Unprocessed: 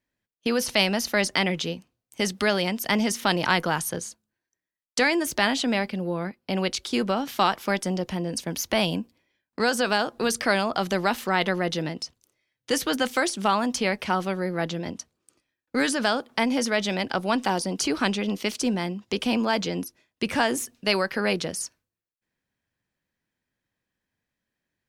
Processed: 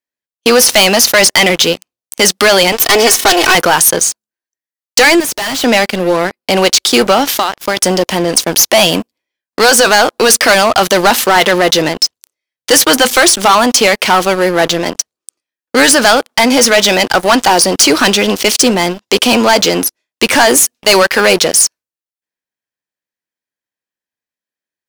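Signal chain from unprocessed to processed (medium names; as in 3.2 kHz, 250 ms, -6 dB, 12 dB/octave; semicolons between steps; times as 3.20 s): 2.72–3.55 s: comb filter that takes the minimum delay 2.7 ms; tone controls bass -14 dB, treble +5 dB; 7.27–7.77 s: compression 16:1, threshold -29 dBFS, peak gain reduction 14 dB; waveshaping leveller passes 5; 5.20–5.64 s: hard clipper -18.5 dBFS, distortion -18 dB; trim +2.5 dB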